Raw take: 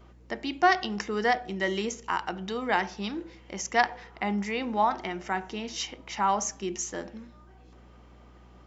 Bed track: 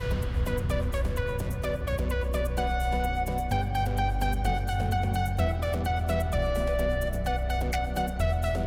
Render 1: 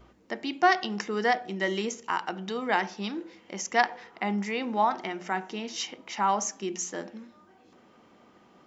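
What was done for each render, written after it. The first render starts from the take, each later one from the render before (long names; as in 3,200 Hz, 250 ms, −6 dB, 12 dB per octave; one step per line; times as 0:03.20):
hum removal 60 Hz, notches 3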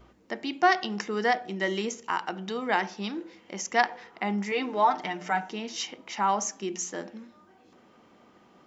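0:04.51–0:05.49: comb filter 6.7 ms, depth 80%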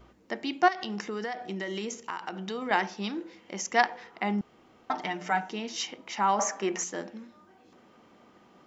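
0:00.68–0:02.71: downward compressor, threshold −30 dBFS
0:04.41–0:04.90: fill with room tone
0:06.39–0:06.84: flat-topped bell 1,000 Hz +12.5 dB 2.6 octaves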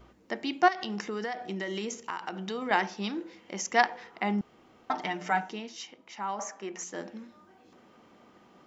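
0:05.40–0:07.11: duck −9 dB, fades 0.36 s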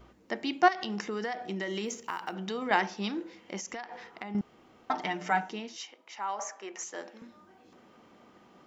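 0:01.85–0:02.36: one scale factor per block 7 bits
0:03.57–0:04.35: downward compressor 12 to 1, threshold −35 dBFS
0:05.77–0:07.22: high-pass filter 430 Hz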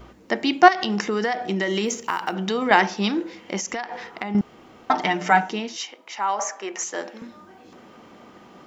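level +10.5 dB
brickwall limiter −1 dBFS, peak gain reduction 1.5 dB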